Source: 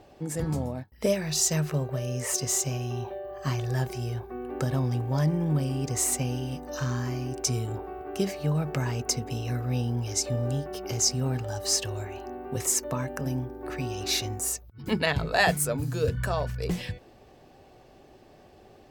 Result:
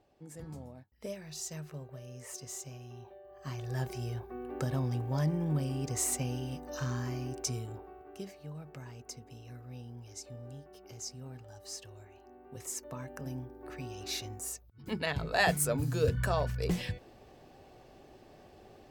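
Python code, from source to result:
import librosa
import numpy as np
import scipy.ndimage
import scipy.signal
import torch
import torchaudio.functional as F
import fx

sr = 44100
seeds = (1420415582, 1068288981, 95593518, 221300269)

y = fx.gain(x, sr, db=fx.line((3.23, -16.0), (3.87, -5.5), (7.28, -5.5), (8.44, -18.0), (12.21, -18.0), (13.22, -10.0), (14.82, -10.0), (15.75, -2.0)))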